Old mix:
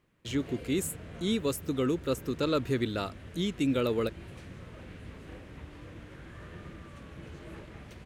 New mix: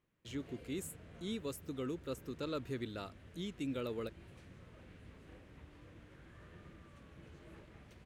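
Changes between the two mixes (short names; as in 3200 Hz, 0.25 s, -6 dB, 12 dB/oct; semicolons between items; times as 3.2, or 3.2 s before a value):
speech -11.5 dB; background -10.5 dB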